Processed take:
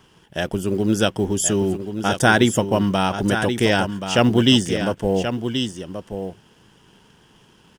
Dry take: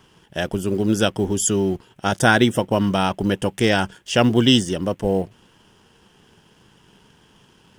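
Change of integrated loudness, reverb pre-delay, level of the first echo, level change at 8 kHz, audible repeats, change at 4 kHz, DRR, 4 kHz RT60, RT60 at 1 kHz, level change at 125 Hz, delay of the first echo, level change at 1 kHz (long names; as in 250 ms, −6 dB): 0.0 dB, no reverb audible, −8.5 dB, +0.5 dB, 1, +0.5 dB, no reverb audible, no reverb audible, no reverb audible, +0.5 dB, 1,079 ms, +0.5 dB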